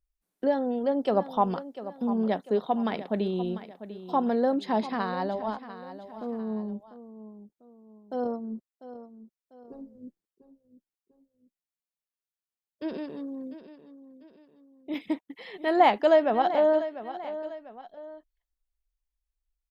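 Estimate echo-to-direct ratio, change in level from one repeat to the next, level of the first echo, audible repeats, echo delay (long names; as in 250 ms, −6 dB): −13.0 dB, −7.5 dB, −13.5 dB, 2, 696 ms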